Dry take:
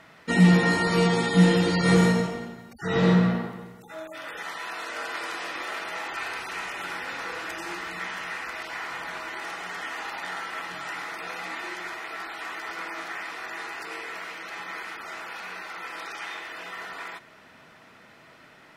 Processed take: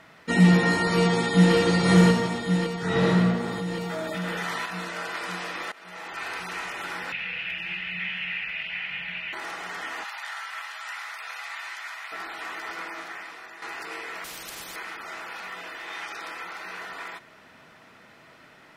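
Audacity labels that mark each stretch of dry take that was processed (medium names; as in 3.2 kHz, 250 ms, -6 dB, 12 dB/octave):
0.930000	1.540000	echo throw 560 ms, feedback 65%, level -3 dB
3.400000	4.660000	level flattener amount 70%
5.720000	6.330000	fade in, from -21.5 dB
7.120000	9.330000	FFT filter 110 Hz 0 dB, 180 Hz +6 dB, 290 Hz -18 dB, 490 Hz -12 dB, 780 Hz -11 dB, 1.1 kHz -17 dB, 2.7 kHz +13 dB, 3.8 kHz -5 dB, 7.7 kHz -26 dB, 13 kHz -15 dB
10.040000	12.120000	Bessel high-pass 1.1 kHz, order 4
12.720000	13.620000	fade out, to -10 dB
14.240000	14.760000	spectrum-flattening compressor 4:1
15.480000	16.790000	reverse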